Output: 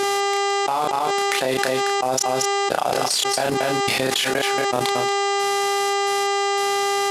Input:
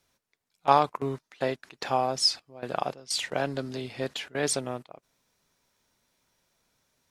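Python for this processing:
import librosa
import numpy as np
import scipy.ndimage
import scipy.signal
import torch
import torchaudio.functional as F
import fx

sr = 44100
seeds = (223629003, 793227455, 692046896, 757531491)

p1 = fx.cvsd(x, sr, bps=64000)
p2 = fx.step_gate(p1, sr, bpm=89, pattern='xxx.x..xxx..x...', floor_db=-60.0, edge_ms=4.5)
p3 = fx.dmg_buzz(p2, sr, base_hz=400.0, harmonics=20, level_db=-51.0, tilt_db=-8, odd_only=False)
p4 = fx.highpass(p3, sr, hz=270.0, slope=6)
p5 = p4 + fx.echo_single(p4, sr, ms=230, db=-16.5, dry=0)
p6 = fx.level_steps(p5, sr, step_db=18)
p7 = fx.peak_eq(p6, sr, hz=9900.0, db=7.0, octaves=2.4)
p8 = fx.doubler(p7, sr, ms=31.0, db=-4)
p9 = fx.dynamic_eq(p8, sr, hz=800.0, q=4.8, threshold_db=-49.0, ratio=4.0, max_db=4)
p10 = fx.env_flatten(p9, sr, amount_pct=100)
y = F.gain(torch.from_numpy(p10), 8.0).numpy()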